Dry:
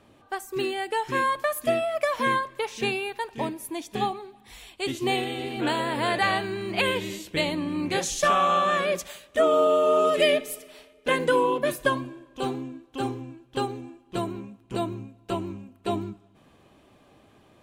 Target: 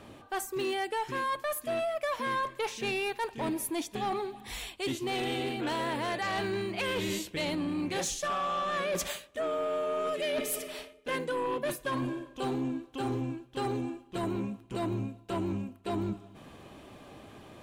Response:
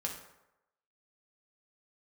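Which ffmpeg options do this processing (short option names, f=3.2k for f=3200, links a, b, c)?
-af "areverse,acompressor=threshold=-34dB:ratio=12,areverse,aeval=exprs='0.0531*sin(PI/2*1.58*val(0)/0.0531)':c=same,volume=-1dB"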